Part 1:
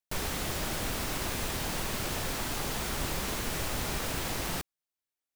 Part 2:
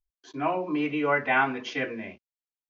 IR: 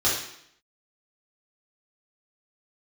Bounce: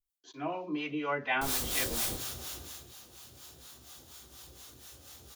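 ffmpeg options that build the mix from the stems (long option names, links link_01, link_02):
-filter_complex "[0:a]adelay=1300,volume=-5dB,afade=type=out:start_time=2.23:duration=0.62:silence=0.223872,asplit=2[link_01][link_02];[link_02]volume=-16.5dB[link_03];[1:a]volume=-4.5dB,asplit=2[link_04][link_05];[link_05]apad=whole_len=293634[link_06];[link_01][link_06]sidechaingate=range=-33dB:threshold=-48dB:ratio=16:detection=peak[link_07];[2:a]atrim=start_sample=2205[link_08];[link_03][link_08]afir=irnorm=-1:irlink=0[link_09];[link_07][link_04][link_09]amix=inputs=3:normalize=0,acrossover=split=640[link_10][link_11];[link_10]aeval=exprs='val(0)*(1-0.7/2+0.7/2*cos(2*PI*4.2*n/s))':channel_layout=same[link_12];[link_11]aeval=exprs='val(0)*(1-0.7/2-0.7/2*cos(2*PI*4.2*n/s))':channel_layout=same[link_13];[link_12][link_13]amix=inputs=2:normalize=0,aexciter=amount=3:drive=3.1:freq=3000"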